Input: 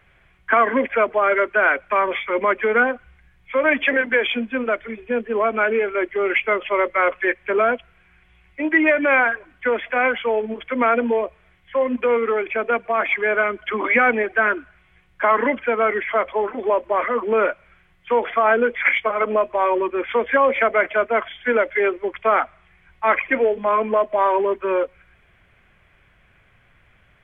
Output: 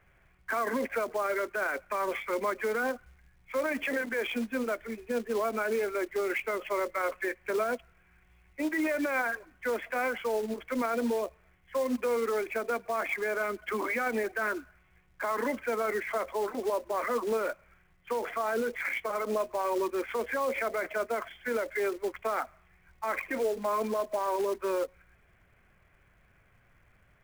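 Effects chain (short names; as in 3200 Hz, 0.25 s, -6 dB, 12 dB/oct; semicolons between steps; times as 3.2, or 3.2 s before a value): Bessel low-pass 1900 Hz, order 2; short-mantissa float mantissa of 2-bit; limiter -16.5 dBFS, peak gain reduction 10.5 dB; gain -6 dB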